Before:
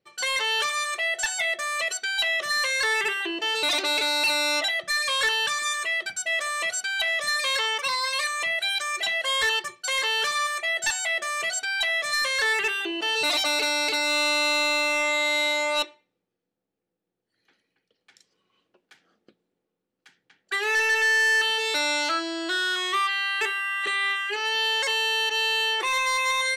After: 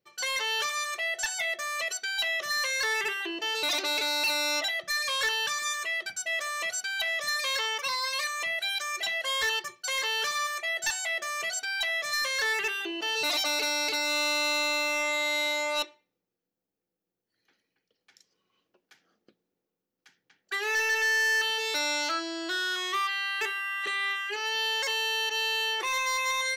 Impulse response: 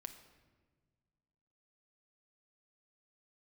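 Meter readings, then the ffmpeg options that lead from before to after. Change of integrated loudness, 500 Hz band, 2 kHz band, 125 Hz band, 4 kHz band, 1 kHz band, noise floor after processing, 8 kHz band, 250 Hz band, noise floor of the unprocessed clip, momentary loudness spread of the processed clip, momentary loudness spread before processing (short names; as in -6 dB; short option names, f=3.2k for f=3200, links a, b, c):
-4.5 dB, -4.5 dB, -4.5 dB, n/a, -4.0 dB, -4.5 dB, under -85 dBFS, -2.5 dB, -4.5 dB, -83 dBFS, 5 LU, 5 LU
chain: -af "aexciter=amount=1.6:drive=2.6:freq=5k,volume=-4.5dB"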